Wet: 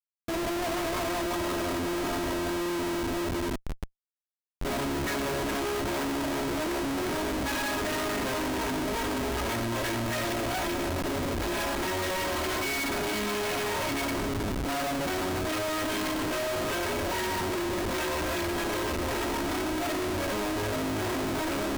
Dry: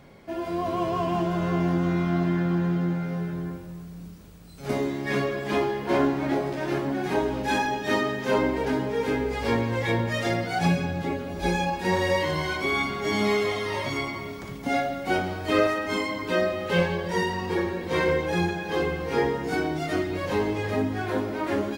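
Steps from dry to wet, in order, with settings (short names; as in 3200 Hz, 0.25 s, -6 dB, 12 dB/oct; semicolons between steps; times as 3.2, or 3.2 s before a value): minimum comb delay 3.1 ms; Schmitt trigger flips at -36.5 dBFS; gain -1.5 dB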